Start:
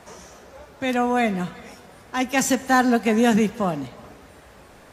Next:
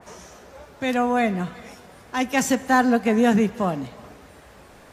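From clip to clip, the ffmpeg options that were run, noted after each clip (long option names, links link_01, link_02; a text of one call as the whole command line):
ffmpeg -i in.wav -af "adynamicequalizer=threshold=0.0141:dfrequency=2500:dqfactor=0.7:tfrequency=2500:tqfactor=0.7:attack=5:release=100:ratio=0.375:range=3:mode=cutabove:tftype=highshelf" out.wav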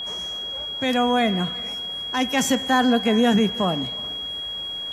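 ffmpeg -i in.wav -filter_complex "[0:a]asplit=2[link_01][link_02];[link_02]alimiter=limit=-15.5dB:level=0:latency=1:release=19,volume=-0.5dB[link_03];[link_01][link_03]amix=inputs=2:normalize=0,aeval=exprs='val(0)+0.0631*sin(2*PI*3300*n/s)':channel_layout=same,volume=-4dB" out.wav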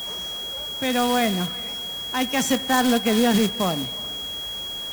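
ffmpeg -i in.wav -af "acrusher=bits=2:mode=log:mix=0:aa=0.000001,volume=-1.5dB" out.wav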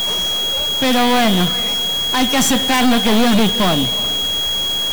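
ffmpeg -i in.wav -af "aeval=exprs='0.562*sin(PI/2*3.55*val(0)/0.562)':channel_layout=same,aeval=exprs='(tanh(3.16*val(0)+0.5)-tanh(0.5))/3.16':channel_layout=same" out.wav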